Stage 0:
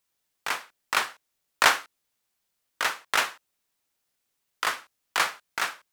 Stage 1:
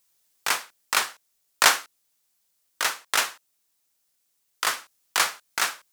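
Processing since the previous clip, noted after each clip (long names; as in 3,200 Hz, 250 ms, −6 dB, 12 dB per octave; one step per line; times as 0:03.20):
bass and treble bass −1 dB, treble +8 dB
in parallel at +2.5 dB: speech leveller 0.5 s
on the sum: level −7.5 dB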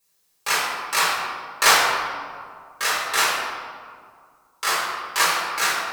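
convolution reverb RT60 2.0 s, pre-delay 5 ms, DRR −8.5 dB
level −7 dB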